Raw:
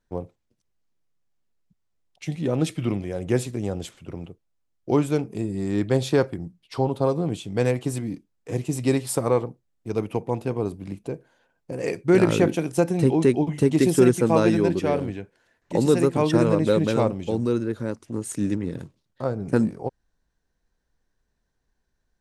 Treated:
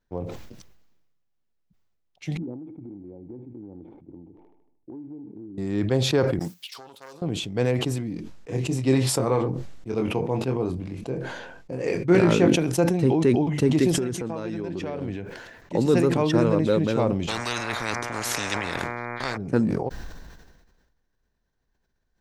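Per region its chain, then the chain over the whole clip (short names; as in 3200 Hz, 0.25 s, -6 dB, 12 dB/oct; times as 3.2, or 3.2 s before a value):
2.37–5.58 vocal tract filter u + compressor 12:1, threshold -34 dBFS + thin delay 76 ms, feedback 65%, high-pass 1700 Hz, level -9 dB
6.39–7.22 self-modulated delay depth 0.21 ms + gate -51 dBFS, range -6 dB + differentiator
8.13–12.56 LPF 11000 Hz 24 dB/oct + doubler 23 ms -6 dB
13.91–15.02 LPF 10000 Hz + compressor 16:1, threshold -24 dBFS
17.27–19.36 buzz 120 Hz, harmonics 20, -49 dBFS + spectral compressor 10:1
whole clip: bell 9500 Hz -10 dB 0.7 oct; sustainer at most 40 dB/s; gain -2 dB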